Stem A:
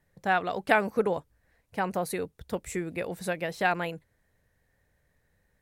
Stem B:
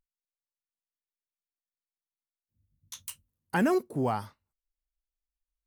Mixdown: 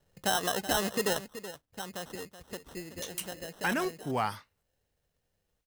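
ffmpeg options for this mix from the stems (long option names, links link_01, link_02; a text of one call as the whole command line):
ffmpeg -i stem1.wav -i stem2.wav -filter_complex "[0:a]highshelf=frequency=5500:gain=-4,acrusher=samples=19:mix=1:aa=0.000001,alimiter=limit=-21.5dB:level=0:latency=1:release=84,volume=-0.5dB,afade=type=out:start_time=1.1:duration=0.31:silence=0.334965,asplit=3[link_01][link_02][link_03];[link_02]volume=-12.5dB[link_04];[1:a]equalizer=frequency=2100:width=0.59:gain=9.5,adelay=100,volume=-1dB[link_05];[link_03]apad=whole_len=254199[link_06];[link_05][link_06]sidechaincompress=threshold=-42dB:ratio=8:attack=16:release=1260[link_07];[link_04]aecho=0:1:377:1[link_08];[link_01][link_07][link_08]amix=inputs=3:normalize=0,highshelf=frequency=3200:gain=8" out.wav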